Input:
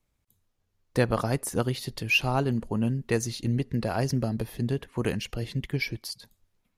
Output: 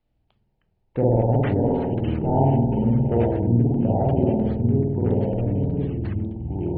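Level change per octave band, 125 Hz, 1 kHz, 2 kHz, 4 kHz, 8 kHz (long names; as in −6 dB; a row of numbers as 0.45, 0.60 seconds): +8.5 dB, +6.0 dB, below −10 dB, below −15 dB, below −40 dB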